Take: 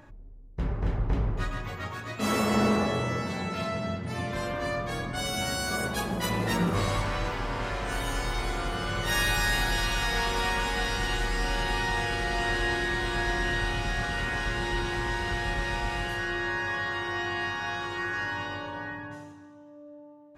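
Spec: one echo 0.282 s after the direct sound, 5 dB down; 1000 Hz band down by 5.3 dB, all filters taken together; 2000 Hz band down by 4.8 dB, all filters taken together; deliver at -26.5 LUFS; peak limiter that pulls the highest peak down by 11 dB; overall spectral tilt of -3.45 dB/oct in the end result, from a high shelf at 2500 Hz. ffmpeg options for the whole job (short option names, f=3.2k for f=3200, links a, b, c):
-af "equalizer=f=1k:t=o:g=-6.5,equalizer=f=2k:t=o:g=-7.5,highshelf=f=2.5k:g=8.5,alimiter=limit=-24dB:level=0:latency=1,aecho=1:1:282:0.562,volume=5.5dB"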